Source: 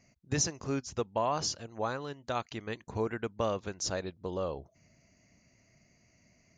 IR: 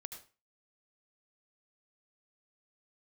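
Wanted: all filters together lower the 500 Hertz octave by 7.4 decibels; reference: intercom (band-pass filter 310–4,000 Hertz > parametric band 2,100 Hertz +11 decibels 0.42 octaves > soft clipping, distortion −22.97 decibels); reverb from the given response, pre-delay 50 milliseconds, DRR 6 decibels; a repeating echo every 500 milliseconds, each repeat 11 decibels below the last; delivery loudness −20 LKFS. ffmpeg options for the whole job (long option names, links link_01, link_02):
-filter_complex "[0:a]equalizer=frequency=500:width_type=o:gain=-8.5,aecho=1:1:500|1000|1500:0.282|0.0789|0.0221,asplit=2[link_01][link_02];[1:a]atrim=start_sample=2205,adelay=50[link_03];[link_02][link_03]afir=irnorm=-1:irlink=0,volume=-2dB[link_04];[link_01][link_04]amix=inputs=2:normalize=0,highpass=310,lowpass=4000,equalizer=frequency=2100:width_type=o:width=0.42:gain=11,asoftclip=threshold=-21.5dB,volume=18dB"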